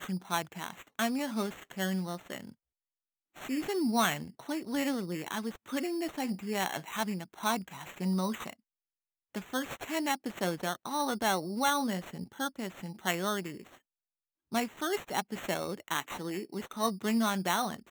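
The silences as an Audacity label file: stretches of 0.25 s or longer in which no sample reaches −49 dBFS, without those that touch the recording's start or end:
2.520000	3.360000	silence
8.530000	9.350000	silence
13.770000	14.520000	silence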